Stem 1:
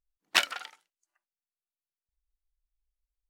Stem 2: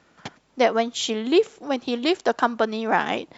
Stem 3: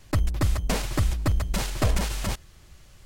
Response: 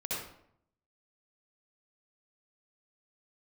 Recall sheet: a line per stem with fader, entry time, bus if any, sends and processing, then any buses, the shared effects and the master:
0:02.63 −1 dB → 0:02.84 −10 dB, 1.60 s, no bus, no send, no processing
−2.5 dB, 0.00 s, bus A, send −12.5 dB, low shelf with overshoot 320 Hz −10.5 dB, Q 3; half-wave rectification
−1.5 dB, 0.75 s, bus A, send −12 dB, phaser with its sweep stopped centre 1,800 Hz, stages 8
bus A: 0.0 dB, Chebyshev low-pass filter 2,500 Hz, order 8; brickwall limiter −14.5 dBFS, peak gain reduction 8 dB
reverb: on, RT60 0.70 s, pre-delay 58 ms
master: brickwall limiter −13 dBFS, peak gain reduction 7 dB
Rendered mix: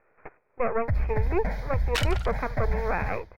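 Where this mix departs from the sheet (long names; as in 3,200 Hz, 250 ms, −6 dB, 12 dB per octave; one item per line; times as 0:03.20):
stem 2: send off
reverb return −6.5 dB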